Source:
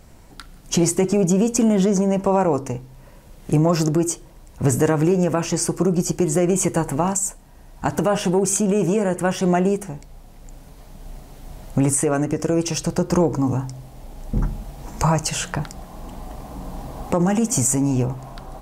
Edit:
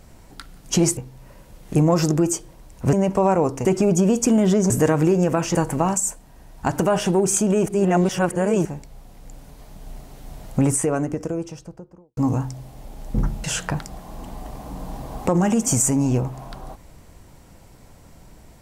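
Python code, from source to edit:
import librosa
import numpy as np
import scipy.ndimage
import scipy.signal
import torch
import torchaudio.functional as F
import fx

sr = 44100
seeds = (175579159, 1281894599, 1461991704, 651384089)

y = fx.studio_fade_out(x, sr, start_s=11.65, length_s=1.71)
y = fx.edit(y, sr, fx.swap(start_s=0.97, length_s=1.05, other_s=2.74, other_length_s=1.96),
    fx.cut(start_s=5.55, length_s=1.19),
    fx.reverse_span(start_s=8.85, length_s=0.99),
    fx.cut(start_s=14.63, length_s=0.66), tone=tone)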